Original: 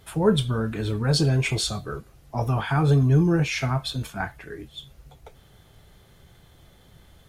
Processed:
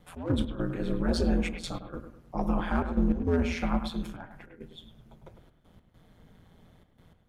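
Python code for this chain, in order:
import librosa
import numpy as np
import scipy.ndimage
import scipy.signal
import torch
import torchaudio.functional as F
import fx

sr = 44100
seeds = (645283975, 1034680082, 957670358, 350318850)

p1 = fx.high_shelf(x, sr, hz=2300.0, db=-11.0)
p2 = fx.hum_notches(p1, sr, base_hz=50, count=5)
p3 = 10.0 ** (-17.5 / 20.0) * (np.abs((p2 / 10.0 ** (-17.5 / 20.0) + 3.0) % 4.0 - 2.0) - 1.0)
p4 = p2 + F.gain(torch.from_numpy(p3), -7.5).numpy()
p5 = fx.step_gate(p4, sr, bpm=101, pattern='x.x.xxxxx', floor_db=-12.0, edge_ms=4.5)
p6 = p5 * np.sin(2.0 * np.pi * 86.0 * np.arange(len(p5)) / sr)
p7 = p6 + fx.echo_bbd(p6, sr, ms=103, stages=2048, feedback_pct=37, wet_db=-9.0, dry=0)
y = F.gain(torch.from_numpy(p7), -3.0).numpy()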